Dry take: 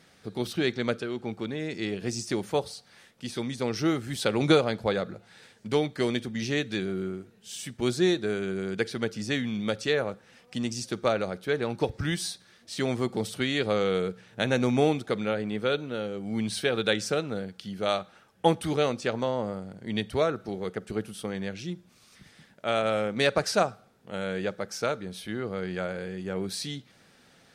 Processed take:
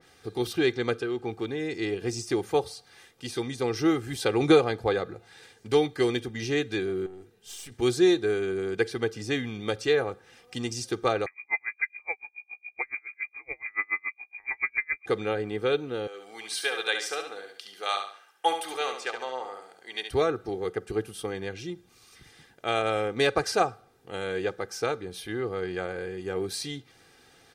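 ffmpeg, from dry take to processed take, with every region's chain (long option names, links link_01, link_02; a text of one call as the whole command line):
ffmpeg -i in.wav -filter_complex "[0:a]asettb=1/sr,asplit=3[link_01][link_02][link_03];[link_01]atrim=end=7.064[link_04];[link_02]atrim=start=7.06:end=7.72,asetpts=PTS-STARTPTS,afade=type=in:duration=0.004:curve=qsin,afade=type=out:start_time=0.656:duration=0.004:curve=qsin,acompressor=threshold=-36dB:ratio=6:attack=3.2:release=140:knee=1:detection=peak,aeval=exprs='(tanh(44.7*val(0)+0.65)-tanh(0.65))/44.7':channel_layout=same[link_05];[link_03]atrim=start=7.716[link_06];[link_04][link_05]acrossfade=duration=0.004:curve1=hsin:curve2=qsin[link_07];[link_07][link_06]acrossfade=duration=0.004:curve1=qsin:curve2=hsin,asettb=1/sr,asplit=3[link_08][link_09][link_10];[link_08]atrim=end=11.264[link_11];[link_09]atrim=start=11.26:end=15.06,asetpts=PTS-STARTPTS,afade=type=in:duration=0.004:curve=qsin,afade=type=out:start_time=3.796:duration=0.004:curve=qsin,aeval=exprs='val(0)+0.0112*(sin(2*PI*60*n/s)+sin(2*PI*2*60*n/s)/2+sin(2*PI*3*60*n/s)/3+sin(2*PI*4*60*n/s)/4+sin(2*PI*5*60*n/s)/5)':channel_layout=same,lowpass=frequency=2100:width_type=q:width=0.5098,lowpass=frequency=2100:width_type=q:width=0.6013,lowpass=frequency=2100:width_type=q:width=0.9,lowpass=frequency=2100:width_type=q:width=2.563,afreqshift=-2500,aeval=exprs='val(0)*pow(10,-39*(0.5-0.5*cos(2*PI*7.1*n/s))/20)':channel_layout=same[link_12];[link_10]atrim=start=15.056[link_13];[link_11][link_12]acrossfade=duration=0.004:curve1=hsin:curve2=qsin[link_14];[link_14][link_13]acrossfade=duration=0.004:curve1=qsin:curve2=hsin,asettb=1/sr,asplit=3[link_15][link_16][link_17];[link_15]atrim=end=16.074[link_18];[link_16]atrim=start=16.07:end=20.11,asetpts=PTS-STARTPTS,afade=type=in:duration=0.004:curve=qsin,afade=type=out:start_time=4.036:duration=0.004:curve=qsin,highpass=800,aecho=1:1:70|140|210|280:0.447|0.156|0.0547|0.0192,atrim=end_sample=178164[link_19];[link_17]atrim=start=20.106[link_20];[link_18][link_19]acrossfade=duration=0.004:curve1=hsin:curve2=qsin[link_21];[link_21][link_20]acrossfade=duration=0.004:curve1=qsin:curve2=hsin,highshelf=frequency=10000:gain=3.5,aecho=1:1:2.5:0.64,adynamicequalizer=threshold=0.00631:dfrequency=2400:dqfactor=0.7:tfrequency=2400:tqfactor=0.7:attack=5:release=100:ratio=0.375:range=2:mode=cutabove:tftype=highshelf" out.wav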